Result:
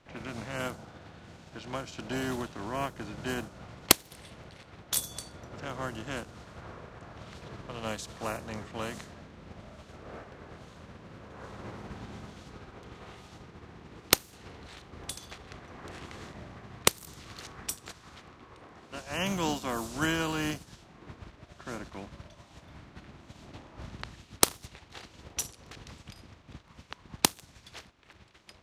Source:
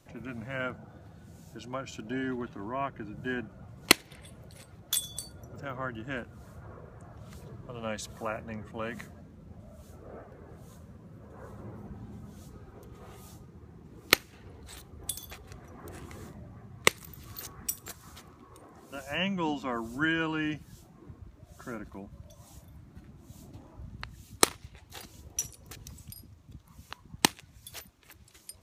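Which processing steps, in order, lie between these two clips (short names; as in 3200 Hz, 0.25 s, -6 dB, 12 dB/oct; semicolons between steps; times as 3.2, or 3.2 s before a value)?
spectral contrast lowered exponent 0.56; low-pass opened by the level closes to 2900 Hz, open at -28.5 dBFS; dynamic EQ 2100 Hz, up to -6 dB, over -47 dBFS, Q 1.1; gain +1.5 dB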